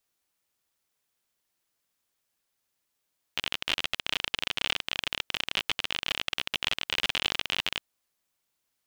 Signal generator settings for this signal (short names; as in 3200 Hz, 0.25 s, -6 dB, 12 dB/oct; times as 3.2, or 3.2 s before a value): random clicks 45/s -11 dBFS 4.52 s